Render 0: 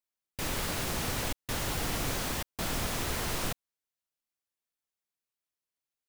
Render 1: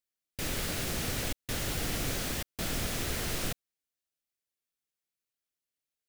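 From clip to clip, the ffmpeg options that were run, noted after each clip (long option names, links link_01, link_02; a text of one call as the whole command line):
ffmpeg -i in.wav -af "equalizer=frequency=970:width_type=o:width=0.71:gain=-8" out.wav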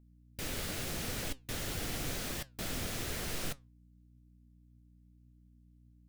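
ffmpeg -i in.wav -af "aeval=exprs='val(0)+0.00178*(sin(2*PI*60*n/s)+sin(2*PI*2*60*n/s)/2+sin(2*PI*3*60*n/s)/3+sin(2*PI*4*60*n/s)/4+sin(2*PI*5*60*n/s)/5)':channel_layout=same,flanger=delay=3.9:depth=8.2:regen=79:speed=0.9:shape=triangular" out.wav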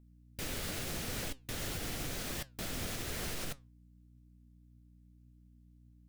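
ffmpeg -i in.wav -af "alimiter=level_in=5dB:limit=-24dB:level=0:latency=1:release=131,volume=-5dB,volume=1dB" out.wav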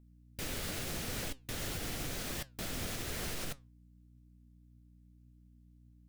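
ffmpeg -i in.wav -af anull out.wav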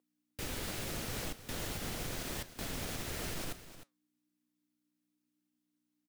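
ffmpeg -i in.wav -filter_complex "[0:a]acrossover=split=350[link_01][link_02];[link_01]acrusher=bits=6:mix=0:aa=0.000001[link_03];[link_03][link_02]amix=inputs=2:normalize=0,aecho=1:1:307:0.211,volume=-1.5dB" out.wav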